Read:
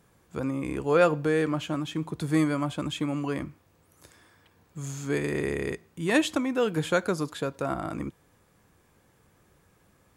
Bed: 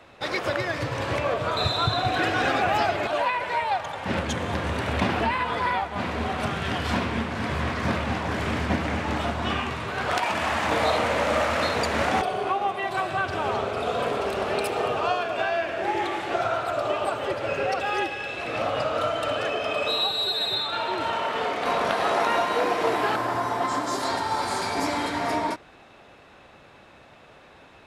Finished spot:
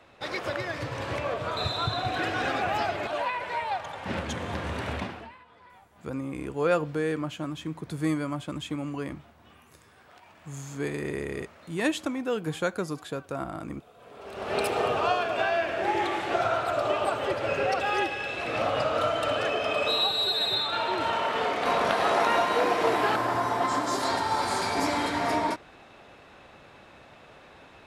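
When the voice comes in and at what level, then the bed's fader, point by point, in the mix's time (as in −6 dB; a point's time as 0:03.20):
5.70 s, −3.5 dB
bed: 0:04.92 −5 dB
0:05.45 −29 dB
0:13.96 −29 dB
0:14.59 −0.5 dB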